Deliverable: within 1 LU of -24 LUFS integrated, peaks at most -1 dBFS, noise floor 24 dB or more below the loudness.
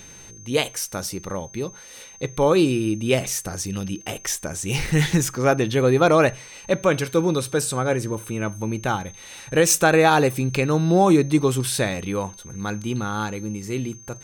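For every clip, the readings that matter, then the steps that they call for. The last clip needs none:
ticks 17/s; steady tone 6300 Hz; tone level -43 dBFS; loudness -22.0 LUFS; peak -5.5 dBFS; loudness target -24.0 LUFS
-> de-click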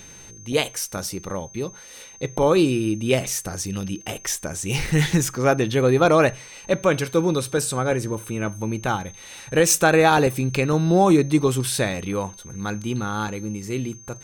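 ticks 0.77/s; steady tone 6300 Hz; tone level -43 dBFS
-> notch 6300 Hz, Q 30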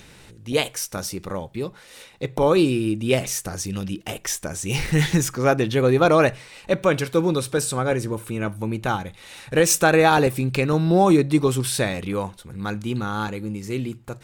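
steady tone none; loudness -22.0 LUFS; peak -5.5 dBFS; loudness target -24.0 LUFS
-> gain -2 dB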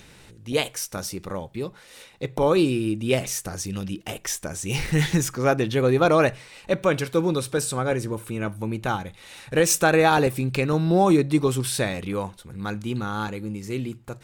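loudness -24.0 LUFS; peak -7.5 dBFS; noise floor -50 dBFS

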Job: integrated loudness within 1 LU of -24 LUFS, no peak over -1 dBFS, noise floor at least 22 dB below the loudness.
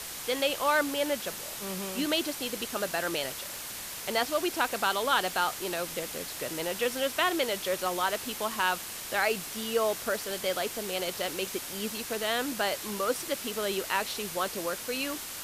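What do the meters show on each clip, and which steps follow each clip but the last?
noise floor -40 dBFS; noise floor target -52 dBFS; loudness -30.0 LUFS; peak -12.5 dBFS; loudness target -24.0 LUFS
-> noise print and reduce 12 dB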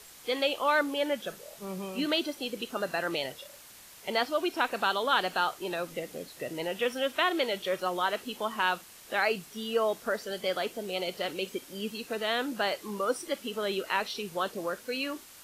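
noise floor -51 dBFS; noise floor target -53 dBFS
-> noise print and reduce 6 dB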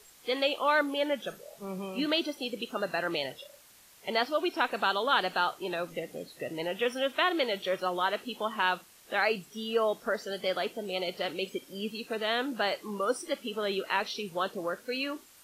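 noise floor -57 dBFS; loudness -31.0 LUFS; peak -12.5 dBFS; loudness target -24.0 LUFS
-> gain +7 dB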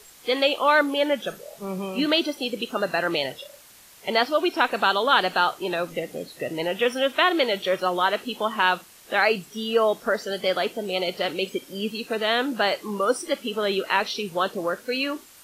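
loudness -24.0 LUFS; peak -5.5 dBFS; noise floor -50 dBFS

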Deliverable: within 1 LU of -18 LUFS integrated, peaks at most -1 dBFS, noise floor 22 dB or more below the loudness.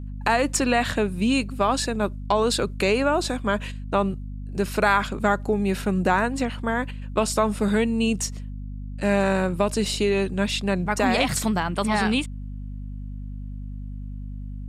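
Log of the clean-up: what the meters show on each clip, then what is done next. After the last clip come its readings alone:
hum 50 Hz; harmonics up to 250 Hz; hum level -31 dBFS; loudness -23.5 LUFS; peak -6.0 dBFS; loudness target -18.0 LUFS
-> notches 50/100/150/200/250 Hz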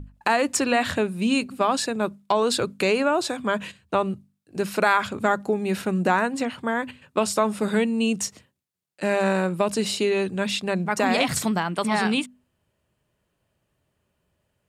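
hum none; loudness -24.0 LUFS; peak -6.0 dBFS; loudness target -18.0 LUFS
-> gain +6 dB; limiter -1 dBFS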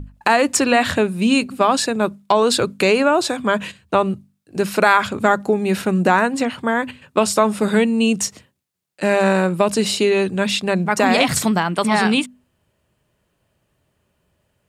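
loudness -18.0 LUFS; peak -1.0 dBFS; noise floor -69 dBFS

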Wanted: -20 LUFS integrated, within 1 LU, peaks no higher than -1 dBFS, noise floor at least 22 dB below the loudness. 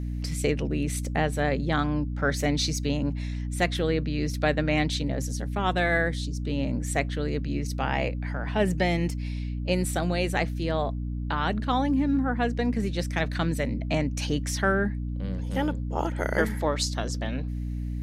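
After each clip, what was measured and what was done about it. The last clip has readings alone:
hum 60 Hz; harmonics up to 300 Hz; hum level -28 dBFS; loudness -27.5 LUFS; peak -8.5 dBFS; loudness target -20.0 LUFS
-> de-hum 60 Hz, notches 5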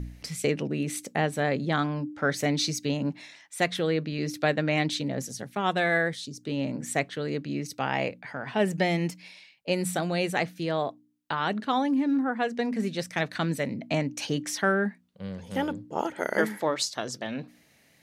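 hum none; loudness -28.5 LUFS; peak -10.0 dBFS; loudness target -20.0 LUFS
-> gain +8.5 dB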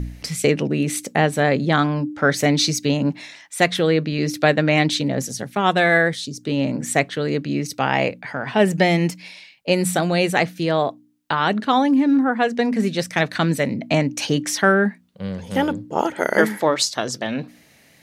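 loudness -20.0 LUFS; peak -1.5 dBFS; noise floor -53 dBFS

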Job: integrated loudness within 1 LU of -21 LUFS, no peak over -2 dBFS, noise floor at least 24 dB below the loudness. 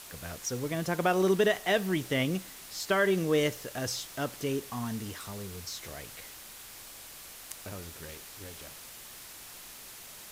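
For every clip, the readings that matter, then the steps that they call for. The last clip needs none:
noise floor -48 dBFS; noise floor target -55 dBFS; loudness -31.0 LUFS; peak -14.5 dBFS; loudness target -21.0 LUFS
-> noise print and reduce 7 dB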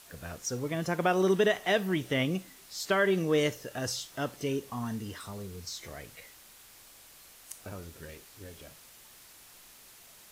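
noise floor -55 dBFS; loudness -30.5 LUFS; peak -15.0 dBFS; loudness target -21.0 LUFS
-> gain +9.5 dB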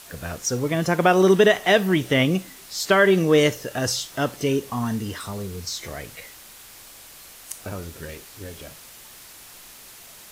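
loudness -21.0 LUFS; peak -5.5 dBFS; noise floor -45 dBFS

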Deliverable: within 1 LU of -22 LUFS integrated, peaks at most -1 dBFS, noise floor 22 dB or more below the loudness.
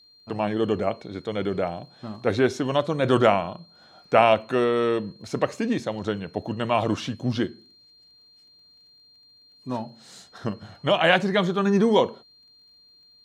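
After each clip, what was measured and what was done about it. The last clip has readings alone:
ticks 18/s; steady tone 4200 Hz; tone level -53 dBFS; loudness -24.0 LUFS; peak -2.0 dBFS; loudness target -22.0 LUFS
-> de-click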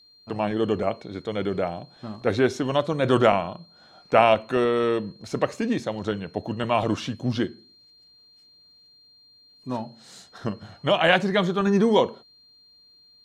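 ticks 0/s; steady tone 4200 Hz; tone level -53 dBFS
-> notch 4200 Hz, Q 30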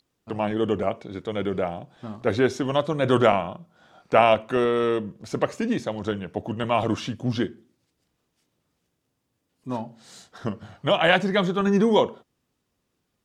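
steady tone none; loudness -24.0 LUFS; peak -2.0 dBFS; loudness target -22.0 LUFS
-> gain +2 dB; limiter -1 dBFS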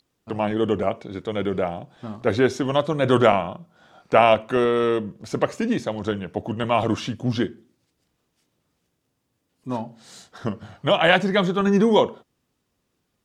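loudness -22.0 LUFS; peak -1.0 dBFS; noise floor -74 dBFS

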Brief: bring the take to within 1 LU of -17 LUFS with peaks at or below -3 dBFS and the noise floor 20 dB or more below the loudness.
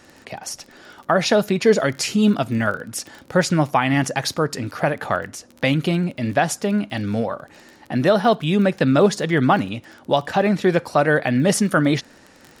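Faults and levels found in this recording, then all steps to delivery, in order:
ticks 19/s; loudness -20.0 LUFS; peak -5.0 dBFS; loudness target -17.0 LUFS
-> de-click; gain +3 dB; limiter -3 dBFS

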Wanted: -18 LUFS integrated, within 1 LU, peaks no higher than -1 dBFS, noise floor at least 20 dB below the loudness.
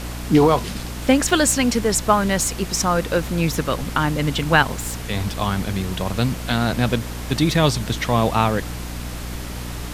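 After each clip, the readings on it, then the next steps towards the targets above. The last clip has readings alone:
hum 60 Hz; harmonics up to 300 Hz; hum level -29 dBFS; noise floor -30 dBFS; noise floor target -40 dBFS; loudness -20.0 LUFS; peak -1.5 dBFS; loudness target -18.0 LUFS
-> de-hum 60 Hz, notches 5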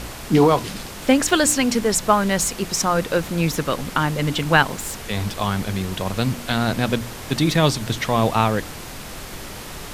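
hum none; noise floor -35 dBFS; noise floor target -41 dBFS
-> noise print and reduce 6 dB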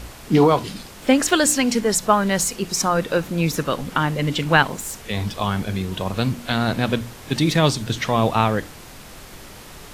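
noise floor -41 dBFS; loudness -20.5 LUFS; peak -2.5 dBFS; loudness target -18.0 LUFS
-> gain +2.5 dB; limiter -1 dBFS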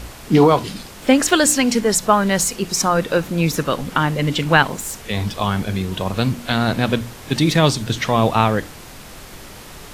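loudness -18.0 LUFS; peak -1.0 dBFS; noise floor -38 dBFS

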